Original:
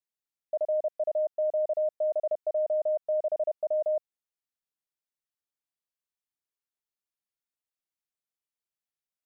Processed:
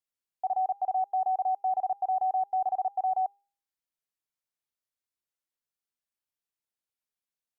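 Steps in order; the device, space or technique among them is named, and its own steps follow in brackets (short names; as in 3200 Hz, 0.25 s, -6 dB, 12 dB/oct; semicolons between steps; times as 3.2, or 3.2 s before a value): de-hum 329 Hz, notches 3; nightcore (varispeed +22%)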